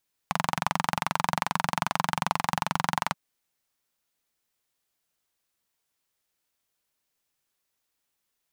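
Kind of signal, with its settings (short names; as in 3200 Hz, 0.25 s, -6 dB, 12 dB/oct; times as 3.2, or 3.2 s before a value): single-cylinder engine model, steady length 2.83 s, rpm 2700, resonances 170/900 Hz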